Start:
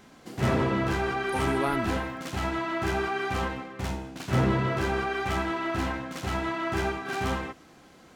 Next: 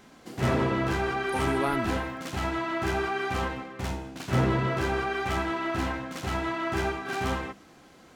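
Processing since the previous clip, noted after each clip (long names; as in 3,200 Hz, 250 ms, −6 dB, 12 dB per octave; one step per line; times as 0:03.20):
mains-hum notches 50/100/150/200 Hz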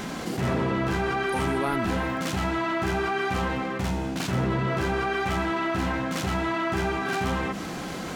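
parametric band 180 Hz +8.5 dB 0.24 octaves
envelope flattener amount 70%
level −3.5 dB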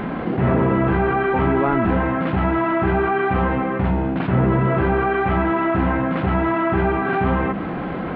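Gaussian smoothing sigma 3.9 samples
level +8.5 dB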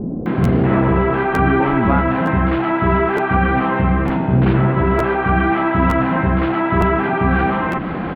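multiband delay without the direct sound lows, highs 260 ms, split 500 Hz
regular buffer underruns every 0.91 s, samples 512, repeat, from 0:00.43
level +4 dB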